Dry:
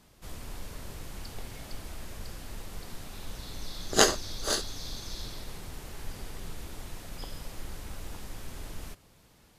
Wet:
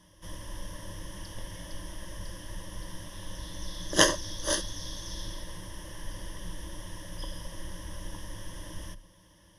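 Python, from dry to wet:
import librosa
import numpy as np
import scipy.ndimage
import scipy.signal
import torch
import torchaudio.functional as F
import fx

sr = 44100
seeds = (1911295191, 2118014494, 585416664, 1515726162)

y = fx.ripple_eq(x, sr, per_octave=1.2, db=16)
y = y * librosa.db_to_amplitude(-2.0)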